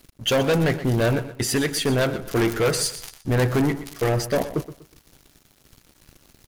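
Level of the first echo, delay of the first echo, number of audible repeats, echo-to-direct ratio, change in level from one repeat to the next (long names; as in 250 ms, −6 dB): −13.5 dB, 122 ms, 3, −13.0 dB, −10.5 dB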